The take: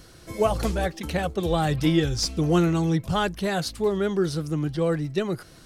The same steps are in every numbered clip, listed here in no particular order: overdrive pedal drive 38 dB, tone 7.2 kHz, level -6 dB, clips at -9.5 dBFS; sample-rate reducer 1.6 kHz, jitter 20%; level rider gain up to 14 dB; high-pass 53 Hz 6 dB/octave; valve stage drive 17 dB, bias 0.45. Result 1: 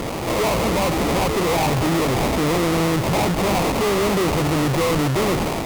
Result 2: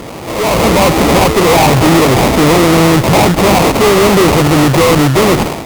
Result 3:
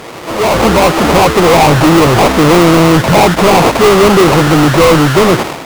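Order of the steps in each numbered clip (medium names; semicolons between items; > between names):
level rider > overdrive pedal > high-pass > sample-rate reducer > valve stage; overdrive pedal > sample-rate reducer > high-pass > valve stage > level rider; high-pass > sample-rate reducer > valve stage > overdrive pedal > level rider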